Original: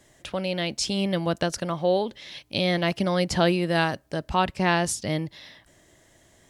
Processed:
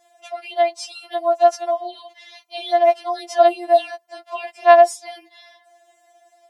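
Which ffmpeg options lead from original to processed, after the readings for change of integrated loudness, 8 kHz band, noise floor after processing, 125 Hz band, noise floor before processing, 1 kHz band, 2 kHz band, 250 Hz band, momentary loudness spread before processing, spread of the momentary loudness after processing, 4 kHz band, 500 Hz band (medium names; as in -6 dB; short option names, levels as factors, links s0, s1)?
+8.0 dB, no reading, -59 dBFS, under -40 dB, -59 dBFS, +11.0 dB, 0.0 dB, -10.5 dB, 9 LU, 21 LU, -4.0 dB, +9.0 dB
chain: -af "highpass=f=720:t=q:w=5.9,afftfilt=real='re*4*eq(mod(b,16),0)':imag='im*4*eq(mod(b,16),0)':win_size=2048:overlap=0.75,volume=0.841"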